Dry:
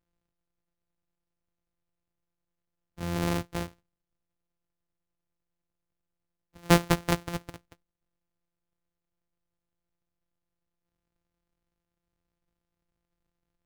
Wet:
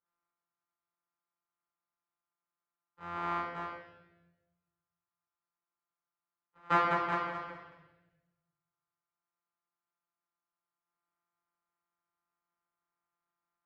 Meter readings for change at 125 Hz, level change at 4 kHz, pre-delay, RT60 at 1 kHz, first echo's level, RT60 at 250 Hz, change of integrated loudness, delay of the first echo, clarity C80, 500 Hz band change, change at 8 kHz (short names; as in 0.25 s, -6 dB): -17.0 dB, -13.0 dB, 6 ms, 0.90 s, none, 1.3 s, -5.0 dB, none, 4.0 dB, -8.0 dB, under -25 dB